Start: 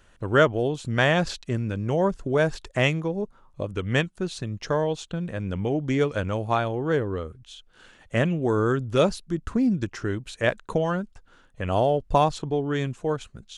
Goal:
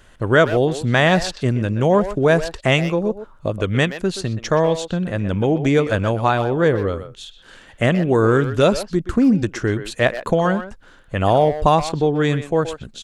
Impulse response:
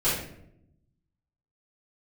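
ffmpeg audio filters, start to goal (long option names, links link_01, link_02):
-filter_complex "[0:a]asplit=2[link_01][link_02];[link_02]alimiter=limit=-14.5dB:level=0:latency=1:release=163,volume=3dB[link_03];[link_01][link_03]amix=inputs=2:normalize=0,asplit=2[link_04][link_05];[link_05]adelay=130,highpass=300,lowpass=3400,asoftclip=type=hard:threshold=-11dB,volume=-10dB[link_06];[link_04][link_06]amix=inputs=2:normalize=0,asetrate=45938,aresample=44100"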